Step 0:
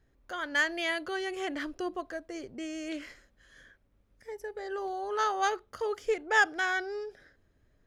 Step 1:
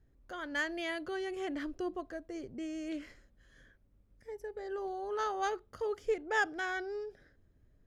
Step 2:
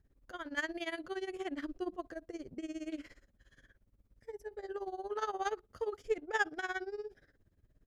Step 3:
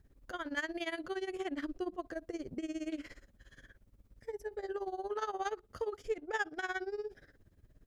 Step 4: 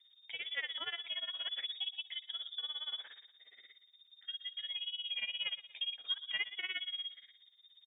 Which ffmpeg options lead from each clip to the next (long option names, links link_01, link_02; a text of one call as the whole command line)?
ffmpeg -i in.wav -af "lowshelf=frequency=440:gain=10.5,volume=-8dB" out.wav
ffmpeg -i in.wav -af "tremolo=f=17:d=0.88,volume=1.5dB" out.wav
ffmpeg -i in.wav -af "acompressor=threshold=-44dB:ratio=2,volume=6dB" out.wav
ffmpeg -i in.wav -af "aecho=1:1:119|238|357|476:0.158|0.065|0.0266|0.0109,lowpass=frequency=3100:width_type=q:width=0.5098,lowpass=frequency=3100:width_type=q:width=0.6013,lowpass=frequency=3100:width_type=q:width=0.9,lowpass=frequency=3100:width_type=q:width=2.563,afreqshift=-3700,volume=-2dB" out.wav